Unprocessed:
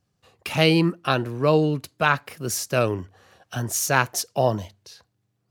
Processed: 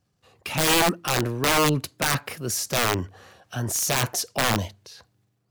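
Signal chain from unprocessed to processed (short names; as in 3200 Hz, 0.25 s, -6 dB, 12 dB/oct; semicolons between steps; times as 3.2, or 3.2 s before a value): transient shaper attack -2 dB, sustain +6 dB; wrapped overs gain 14.5 dB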